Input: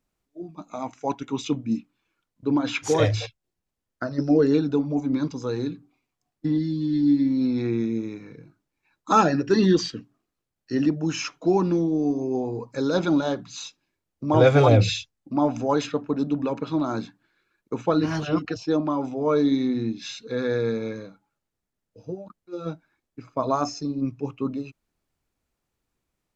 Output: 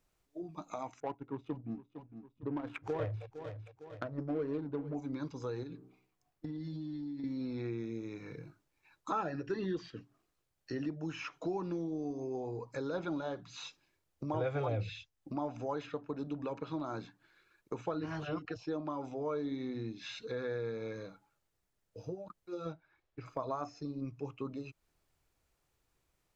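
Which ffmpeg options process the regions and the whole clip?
ffmpeg -i in.wav -filter_complex "[0:a]asettb=1/sr,asplit=3[link_01][link_02][link_03];[link_01]atrim=end=1.004[link_04];[link_02]atrim=start=1:end=4.95,asetpts=PTS-STARTPTS,afade=type=in:duration=0.004:curve=qsin,afade=type=out:start_time=3.946:duration=0.004:curve=qsin,adynamicsmooth=sensitivity=1:basefreq=570,aecho=1:1:456|912:0.1|0.03,atrim=end_sample=174195[link_05];[link_03]atrim=start=4.946[link_06];[link_04][link_05]acrossfade=duration=0.004:curve1=hsin:curve2=qsin[link_07];[link_07][link_06]acrossfade=duration=0.004:curve1=qsin:curve2=hsin,asettb=1/sr,asplit=3[link_08][link_09][link_10];[link_08]atrim=end=5.634[link_11];[link_09]atrim=start=5.63:end=7.24,asetpts=PTS-STARTPTS,afade=type=in:duration=0.004:curve=qsin,afade=type=out:start_time=1.606:duration=0.004:curve=qsin,equalizer=frequency=6300:width=0.43:gain=-4.5,bandreject=frequency=63.44:width_type=h:width=4,bandreject=frequency=126.88:width_type=h:width=4,bandreject=frequency=190.32:width_type=h:width=4,bandreject=frequency=253.76:width_type=h:width=4,bandreject=frequency=317.2:width_type=h:width=4,bandreject=frequency=380.64:width_type=h:width=4,bandreject=frequency=444.08:width_type=h:width=4,bandreject=frequency=507.52:width_type=h:width=4,bandreject=frequency=570.96:width_type=h:width=4,bandreject=frequency=634.4:width_type=h:width=4,bandreject=frequency=697.84:width_type=h:width=4,bandreject=frequency=761.28:width_type=h:width=4,bandreject=frequency=824.72:width_type=h:width=4,bandreject=frequency=888.16:width_type=h:width=4,bandreject=frequency=951.6:width_type=h:width=4,bandreject=frequency=1015.04:width_type=h:width=4,bandreject=frequency=1078.48:width_type=h:width=4,bandreject=frequency=1141.92:width_type=h:width=4,bandreject=frequency=1205.36:width_type=h:width=4,bandreject=frequency=1268.8:width_type=h:width=4,bandreject=frequency=1332.24:width_type=h:width=4,acompressor=threshold=-30dB:ratio=6:attack=3.2:release=140:knee=1:detection=peak[link_12];[link_10]atrim=start=7.236[link_13];[link_11][link_12]acrossfade=duration=0.004:curve1=hsin:curve2=qsin[link_14];[link_14][link_13]acrossfade=duration=0.004:curve1=qsin:curve2=hsin,asettb=1/sr,asplit=3[link_15][link_16][link_17];[link_15]atrim=end=22.724[link_18];[link_16]atrim=start=22.72:end=23.26,asetpts=PTS-STARTPTS,afade=type=in:duration=0.004:curve=qsin,afade=type=out:start_time=0.536:duration=0.004:curve=qsin,lowpass=3800,equalizer=frequency=230:width=3.2:gain=-12.5[link_19];[link_17]atrim=start=23.256[link_20];[link_18][link_19]acrossfade=duration=0.004:curve1=hsin:curve2=qsin[link_21];[link_21][link_20]acrossfade=duration=0.004:curve1=qsin:curve2=hsin,acrossover=split=3100[link_22][link_23];[link_23]acompressor=threshold=-52dB:ratio=4:attack=1:release=60[link_24];[link_22][link_24]amix=inputs=2:normalize=0,equalizer=frequency=230:width=2:gain=-8,acompressor=threshold=-44dB:ratio=2.5,volume=2dB" out.wav

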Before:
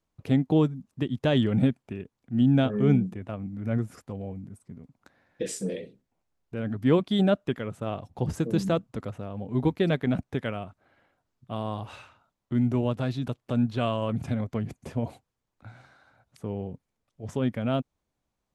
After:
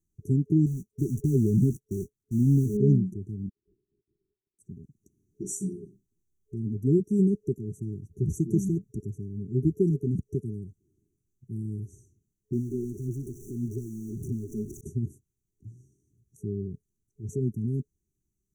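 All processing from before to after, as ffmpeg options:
ffmpeg -i in.wav -filter_complex "[0:a]asettb=1/sr,asplit=3[link_01][link_02][link_03];[link_01]atrim=end=0.664[link_04];[link_02]atrim=start=0.66:end=2.77,asetpts=PTS-STARTPTS,afade=type=in:duration=0.004:curve=qsin,afade=type=out:start_time=2.106:duration=0.004:curve=qsin,aeval=exprs='val(0)+0.5*0.0224*sgn(val(0))':channel_layout=same,agate=range=-50dB:threshold=-35dB:ratio=16:release=100:detection=peak[link_05];[link_03]atrim=start=2.766[link_06];[link_04][link_05]acrossfade=duration=0.004:curve1=hsin:curve2=qsin[link_07];[link_07][link_06]acrossfade=duration=0.004:curve1=qsin:curve2=hsin,asettb=1/sr,asplit=3[link_08][link_09][link_10];[link_08]atrim=end=3.494[link_11];[link_09]atrim=start=3.49:end=4.59,asetpts=PTS-STARTPTS,afade=type=in:duration=0.004:curve=qsin,afade=type=out:start_time=1.096:duration=0.004:curve=qsin,bandreject=frequency=120.4:width_type=h:width=4,bandreject=frequency=240.8:width_type=h:width=4,bandreject=frequency=361.2:width_type=h:width=4,bandreject=frequency=481.6:width_type=h:width=4,bandreject=frequency=602:width_type=h:width=4,bandreject=frequency=722.4:width_type=h:width=4,bandreject=frequency=842.8:width_type=h:width=4,bandreject=frequency=963.2:width_type=h:width=4,bandreject=frequency=1083.6:width_type=h:width=4,bandreject=frequency=1204:width_type=h:width=4,bandreject=frequency=1324.4:width_type=h:width=4,bandreject=frequency=1444.8:width_type=h:width=4,bandreject=frequency=1565.2:width_type=h:width=4,bandreject=frequency=1685.6:width_type=h:width=4,bandreject=frequency=1806:width_type=h:width=4,bandreject=frequency=1926.4:width_type=h:width=4,bandreject=frequency=2046.8:width_type=h:width=4,bandreject=frequency=2167.2:width_type=h:width=4,bandreject=frequency=2287.6:width_type=h:width=4,bandreject=frequency=2408:width_type=h:width=4,bandreject=frequency=2528.4:width_type=h:width=4,bandreject=frequency=2648.8:width_type=h:width=4,bandreject=frequency=2769.2:width_type=h:width=4,bandreject=frequency=2889.6:width_type=h:width=4,bandreject=frequency=3010:width_type=h:width=4,bandreject=frequency=3130.4:width_type=h:width=4,bandreject=frequency=3250.8:width_type=h:width=4,asoftclip=type=hard:threshold=-23.5dB,lowpass=frequency=2500:width_type=q:width=0.5098,lowpass=frequency=2500:width_type=q:width=0.6013,lowpass=frequency=2500:width_type=q:width=0.9,lowpass=frequency=2500:width_type=q:width=2.563,afreqshift=-2900[link_12];[link_10]atrim=start=4.586[link_13];[link_11][link_12]acrossfade=duration=0.004:curve1=hsin:curve2=qsin[link_14];[link_14][link_13]acrossfade=duration=0.004:curve1=qsin:curve2=hsin,asettb=1/sr,asplit=3[link_15][link_16][link_17];[link_15]atrim=end=12.534[link_18];[link_16]atrim=start=12.53:end=14.81,asetpts=PTS-STARTPTS,afade=type=in:duration=0.004:curve=qsin,afade=type=out:start_time=2.276:duration=0.004:curve=qsin,aeval=exprs='val(0)+0.5*0.0335*sgn(val(0))':channel_layout=same,bass=frequency=250:gain=-12,treble=frequency=4000:gain=-13,aphaser=in_gain=1:out_gain=1:delay=4.8:decay=0.41:speed=1.7:type=sinusoidal[link_19];[link_17]atrim=start=14.806[link_20];[link_18][link_19]acrossfade=duration=0.004:curve1=hsin:curve2=qsin[link_21];[link_21][link_20]acrossfade=duration=0.004:curve1=qsin:curve2=hsin,afftfilt=real='re*(1-between(b*sr/4096,420,5700))':imag='im*(1-between(b*sr/4096,420,5700))':win_size=4096:overlap=0.75,equalizer=frequency=260:width=4:gain=-9,volume=2.5dB" out.wav

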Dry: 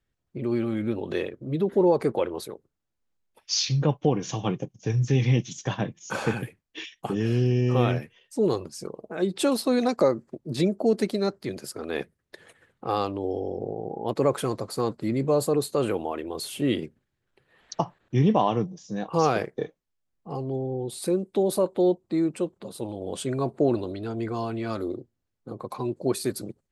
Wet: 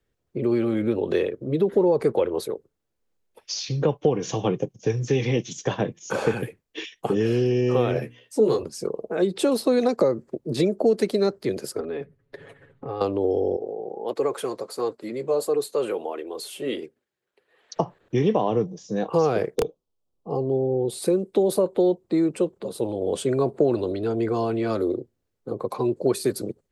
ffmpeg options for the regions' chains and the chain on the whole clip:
ffmpeg -i in.wav -filter_complex "[0:a]asettb=1/sr,asplit=3[link_01][link_02][link_03];[link_01]atrim=end=7.944[link_04];[link_02]atrim=start=7.94:end=8.63,asetpts=PTS-STARTPTS,afade=type=in:duration=0.004:curve=qsin,afade=type=out:start_time=0.686:duration=0.004:curve=qsin,highpass=97,bandreject=frequency=60:width_type=h:width=6,bandreject=frequency=120:width_type=h:width=6,bandreject=frequency=180:width_type=h:width=6,bandreject=frequency=240:width_type=h:width=6,bandreject=frequency=300:width_type=h:width=6,asplit=2[link_05][link_06];[link_06]adelay=14,volume=-3dB[link_07];[link_05][link_07]amix=inputs=2:normalize=0,atrim=end_sample=30429[link_08];[link_03]atrim=start=8.626[link_09];[link_04][link_08]acrossfade=duration=0.004:curve1=hsin:curve2=qsin[link_10];[link_10][link_09]acrossfade=duration=0.004:curve1=qsin:curve2=hsin,asettb=1/sr,asplit=3[link_11][link_12][link_13];[link_11]atrim=end=11.804[link_14];[link_12]atrim=start=11.8:end=13.01,asetpts=PTS-STARTPTS,afade=type=in:duration=0.004:curve=qsin,afade=type=out:start_time=1.206:duration=0.004:curve=qsin,bass=frequency=250:gain=9,treble=frequency=4000:gain=-13,aecho=1:1:7.2:0.76,atrim=end_sample=53361,acompressor=threshold=-39dB:ratio=3:attack=3.2:release=140:knee=1:detection=peak[link_15];[link_13]atrim=start=13.006[link_16];[link_14][link_15]acrossfade=duration=0.004:curve1=hsin:curve2=qsin[link_17];[link_17][link_16]acrossfade=duration=0.004:curve1=qsin:curve2=hsin,asettb=1/sr,asplit=3[link_18][link_19][link_20];[link_18]atrim=end=13.564[link_21];[link_19]atrim=start=13.56:end=17.76,asetpts=PTS-STARTPTS,afade=type=in:duration=0.004:curve=qsin,afade=type=out:start_time=4.196:duration=0.004:curve=qsin,highpass=frequency=560:poles=1,flanger=delay=2.5:depth=3.1:regen=-51:speed=1.5:shape=sinusoidal[link_22];[link_20]atrim=start=17.756[link_23];[link_21][link_22]acrossfade=duration=0.004:curve1=hsin:curve2=qsin[link_24];[link_24][link_23]acrossfade=duration=0.004:curve1=qsin:curve2=hsin,asettb=1/sr,asplit=3[link_25][link_26][link_27];[link_25]atrim=end=19.554[link_28];[link_26]atrim=start=19.55:end=20.85,asetpts=PTS-STARTPTS,afade=type=in:duration=0.004:curve=qsin,afade=type=out:start_time=1.296:duration=0.004:curve=qsin,asuperstop=centerf=1900:order=4:qfactor=1.1,highshelf=frequency=4600:gain=-7.5,aeval=exprs='(mod(7.08*val(0)+1,2)-1)/7.08':channel_layout=same[link_29];[link_27]atrim=start=20.846[link_30];[link_28][link_29]acrossfade=duration=0.004:curve1=hsin:curve2=qsin[link_31];[link_31][link_30]acrossfade=duration=0.004:curve1=qsin:curve2=hsin,equalizer=frequency=450:width_type=o:width=0.79:gain=8.5,acrossover=split=210|770[link_32][link_33][link_34];[link_32]acompressor=threshold=-31dB:ratio=4[link_35];[link_33]acompressor=threshold=-23dB:ratio=4[link_36];[link_34]acompressor=threshold=-32dB:ratio=4[link_37];[link_35][link_36][link_37]amix=inputs=3:normalize=0,volume=2.5dB" out.wav

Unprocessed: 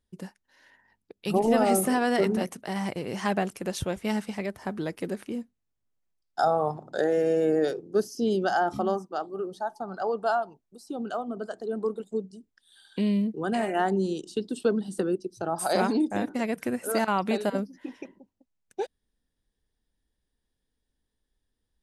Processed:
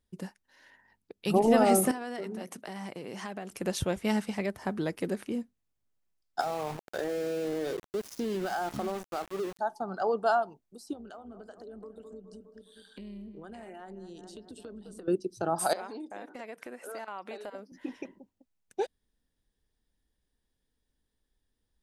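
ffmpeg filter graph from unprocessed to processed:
ffmpeg -i in.wav -filter_complex "[0:a]asettb=1/sr,asplit=3[link_01][link_02][link_03];[link_01]atrim=end=1.914[link_04];[link_02]atrim=start=1.91:end=3.51,asetpts=PTS-STARTPTS,afade=type=in:duration=0.004:curve=qsin,afade=type=out:start_time=1.596:duration=0.004:curve=qsin,highpass=160,acompressor=threshold=-38dB:ratio=3:attack=3.2:release=140:knee=1:detection=peak[link_05];[link_03]atrim=start=3.506[link_06];[link_04][link_05]acrossfade=duration=0.004:curve1=hsin:curve2=qsin[link_07];[link_07][link_06]acrossfade=duration=0.004:curve1=qsin:curve2=hsin,asettb=1/sr,asplit=3[link_08][link_09][link_10];[link_08]atrim=end=6.404[link_11];[link_09]atrim=start=6.4:end=9.59,asetpts=PTS-STARTPTS,afade=type=in:duration=0.004:curve=qsin,afade=type=out:start_time=3.186:duration=0.004:curve=qsin,acompressor=threshold=-28dB:ratio=8:attack=3.2:release=140:knee=1:detection=peak,aeval=exprs='val(0)*gte(abs(val(0)),0.0119)':channel_layout=same[link_12];[link_10]atrim=start=9.586[link_13];[link_11][link_12]acrossfade=duration=0.004:curve1=hsin:curve2=qsin[link_14];[link_14][link_13]acrossfade=duration=0.004:curve1=qsin:curve2=hsin,asettb=1/sr,asplit=3[link_15][link_16][link_17];[link_15]atrim=end=10.934[link_18];[link_16]atrim=start=10.93:end=15.08,asetpts=PTS-STARTPTS,afade=type=in:duration=0.004:curve=qsin,afade=type=out:start_time=4.146:duration=0.004:curve=qsin,asplit=2[link_19][link_20];[link_20]adelay=207,lowpass=frequency=2300:poles=1,volume=-16dB,asplit=2[link_21][link_22];[link_22]adelay=207,lowpass=frequency=2300:poles=1,volume=0.53,asplit=2[link_23][link_24];[link_24]adelay=207,lowpass=frequency=2300:poles=1,volume=0.53,asplit=2[link_25][link_26];[link_26]adelay=207,lowpass=frequency=2300:poles=1,volume=0.53,asplit=2[link_27][link_28];[link_28]adelay=207,lowpass=frequency=2300:poles=1,volume=0.53[link_29];[link_19][link_21][link_23][link_25][link_27][link_29]amix=inputs=6:normalize=0,atrim=end_sample=183015,acompressor=threshold=-42dB:ratio=5:attack=3.2:release=140:knee=1:detection=peak,tremolo=f=170:d=0.462[link_30];[link_17]atrim=start=15.076[link_31];[link_18][link_30]acrossfade=duration=0.004:curve1=hsin:curve2=qsin[link_32];[link_32][link_31]acrossfade=duration=0.004:curve1=qsin:curve2=hsin,asettb=1/sr,asplit=3[link_33][link_34][link_35];[link_33]atrim=end=15.734[link_36];[link_34]atrim=start=15.73:end=17.72,asetpts=PTS-STARTPTS,afade=type=in:duration=0.004:curve=qsin,afade=type=out:start_time=1.986:duration=0.004:curve=qsin,highpass=460,highshelf=frequency=4500:gain=-9.5,acompressor=threshold=-42dB:ratio=2.5:attack=3.2:release=140:knee=1:detection=peak[link_37];[link_35]atrim=start=17.716[link_38];[link_36][link_37]acrossfade=duration=0.004:curve1=hsin:curve2=qsin[link_39];[link_39][link_38]acrossfade=duration=0.004:curve1=qsin:curve2=hsin" out.wav

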